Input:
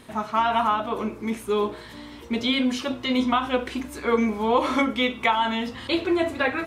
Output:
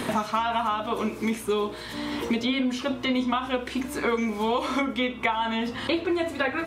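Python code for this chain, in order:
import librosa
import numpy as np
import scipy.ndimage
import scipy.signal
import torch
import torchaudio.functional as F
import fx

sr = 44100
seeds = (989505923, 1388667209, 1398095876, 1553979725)

y = fx.band_squash(x, sr, depth_pct=100)
y = y * librosa.db_to_amplitude(-3.5)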